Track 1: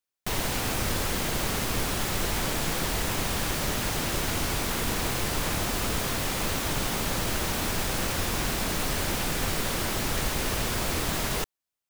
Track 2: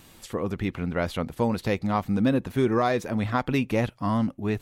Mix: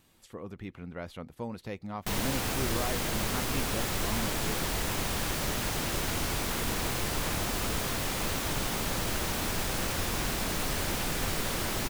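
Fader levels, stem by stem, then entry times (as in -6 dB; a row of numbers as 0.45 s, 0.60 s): -3.0 dB, -13.0 dB; 1.80 s, 0.00 s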